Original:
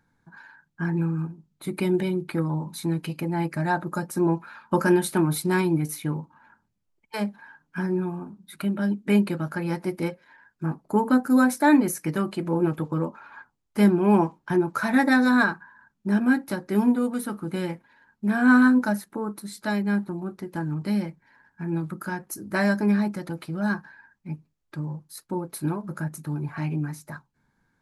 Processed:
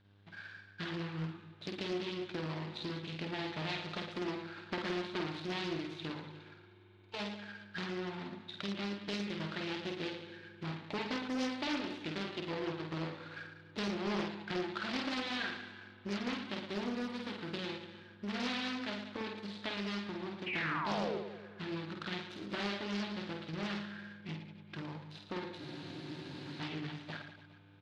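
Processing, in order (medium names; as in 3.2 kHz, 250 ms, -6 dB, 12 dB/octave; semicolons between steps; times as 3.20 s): median filter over 41 samples; tilt EQ +4 dB/octave; compression 3:1, threshold -43 dBFS, peak gain reduction 17 dB; mains buzz 100 Hz, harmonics 37, -71 dBFS -8 dB/octave; four-pole ladder low-pass 4.2 kHz, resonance 55%; painted sound fall, 20.46–21.18 s, 360–2800 Hz -51 dBFS; reverse bouncing-ball echo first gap 50 ms, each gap 1.25×, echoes 5; on a send at -18.5 dB: reverberation RT60 5.8 s, pre-delay 44 ms; on the sum: spectral freeze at 25.60 s, 1.00 s; loudspeaker Doppler distortion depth 0.51 ms; trim +12 dB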